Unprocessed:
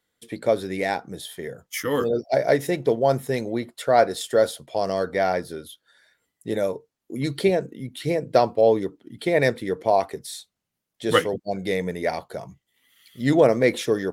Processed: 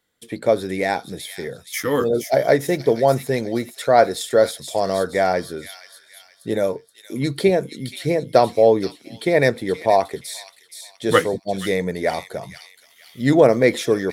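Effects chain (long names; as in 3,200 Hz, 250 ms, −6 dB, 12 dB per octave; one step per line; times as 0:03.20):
on a send: delay with a high-pass on its return 474 ms, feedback 37%, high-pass 3,000 Hz, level −5 dB
on the sum: dynamic equaliser 2,900 Hz, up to −6 dB, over −53 dBFS, Q 6.5
level +3.5 dB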